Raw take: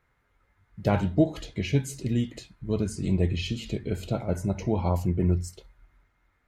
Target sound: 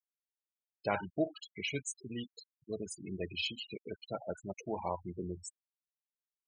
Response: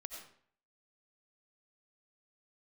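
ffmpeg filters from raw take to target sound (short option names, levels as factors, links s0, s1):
-af "highpass=f=1400:p=1,afftfilt=real='re*gte(hypot(re,im),0.02)':imag='im*gte(hypot(re,im),0.02)':win_size=1024:overlap=0.75,volume=1.12"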